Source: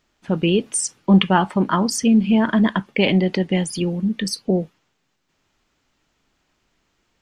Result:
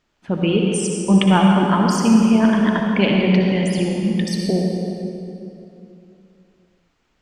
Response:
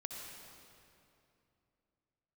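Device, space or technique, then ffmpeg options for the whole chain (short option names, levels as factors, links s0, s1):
swimming-pool hall: -filter_complex "[1:a]atrim=start_sample=2205[s0];[0:a][s0]afir=irnorm=-1:irlink=0,highshelf=f=5800:g=-6.5,volume=1.5"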